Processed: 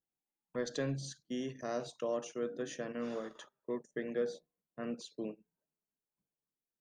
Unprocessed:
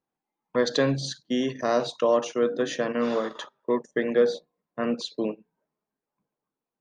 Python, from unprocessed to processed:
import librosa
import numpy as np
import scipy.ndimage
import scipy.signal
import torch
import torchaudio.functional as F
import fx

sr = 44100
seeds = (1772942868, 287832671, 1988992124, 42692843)

y = fx.graphic_eq_10(x, sr, hz=(125, 250, 500, 1000, 2000, 4000), db=(-3, -6, -6, -11, -5, -11))
y = y * 10.0 ** (-4.5 / 20.0)